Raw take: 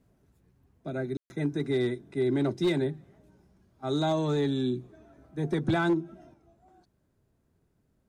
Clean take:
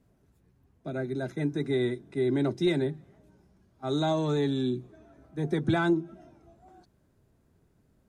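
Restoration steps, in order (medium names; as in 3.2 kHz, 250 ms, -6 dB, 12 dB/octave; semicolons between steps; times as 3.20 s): clip repair -20 dBFS; room tone fill 1.17–1.30 s; gain correction +5 dB, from 6.34 s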